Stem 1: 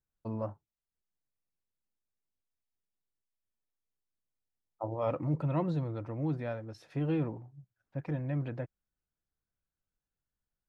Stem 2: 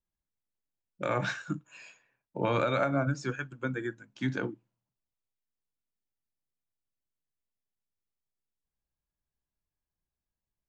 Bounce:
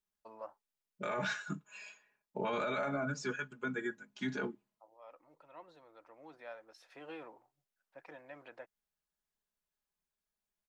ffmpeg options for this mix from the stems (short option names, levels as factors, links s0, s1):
-filter_complex "[0:a]highpass=670,volume=0.668[s0];[1:a]aecho=1:1:4.8:0.98,volume=0.668,asplit=2[s1][s2];[s2]apad=whole_len=471064[s3];[s0][s3]sidechaincompress=threshold=0.00178:ratio=3:attack=5.3:release=1230[s4];[s4][s1]amix=inputs=2:normalize=0,lowshelf=f=160:g=-10.5,alimiter=level_in=1.5:limit=0.0631:level=0:latency=1:release=10,volume=0.668"